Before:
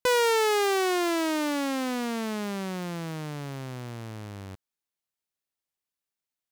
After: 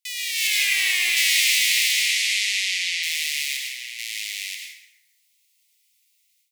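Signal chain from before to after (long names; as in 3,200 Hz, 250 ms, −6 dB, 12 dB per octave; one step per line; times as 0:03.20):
0:03.57–0:03.99: spectral tilt −2 dB per octave
in parallel at −2 dB: downward compressor, threshold −33 dBFS, peak gain reduction 12 dB
on the sum: soft clipping −20 dBFS, distortion −17 dB
Butterworth high-pass 2,000 Hz 96 dB per octave
0:00.47–0:01.17: hard clipping −36.5 dBFS, distortion −11 dB
0:01.92–0:03.02: low-pass filter 11,000 Hz → 5,500 Hz 12 dB per octave
dense smooth reverb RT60 1.1 s, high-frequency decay 0.6×, pre-delay 85 ms, DRR −0.5 dB
automatic gain control gain up to 15.5 dB
level +1.5 dB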